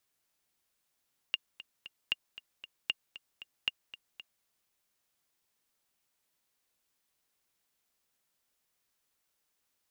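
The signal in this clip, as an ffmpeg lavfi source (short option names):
-f lavfi -i "aevalsrc='pow(10,(-15.5-16.5*gte(mod(t,3*60/231),60/231))/20)*sin(2*PI*2820*mod(t,60/231))*exp(-6.91*mod(t,60/231)/0.03)':d=3.11:s=44100"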